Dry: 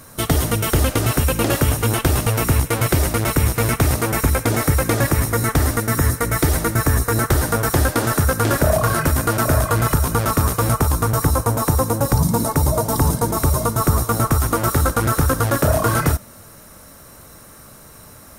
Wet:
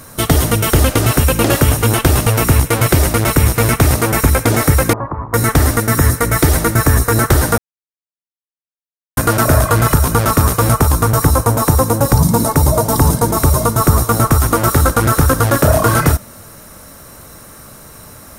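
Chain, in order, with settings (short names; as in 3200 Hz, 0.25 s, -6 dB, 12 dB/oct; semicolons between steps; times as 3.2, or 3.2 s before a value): 4.93–5.34 ladder low-pass 1100 Hz, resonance 75%; 7.58–9.17 mute; gain +5.5 dB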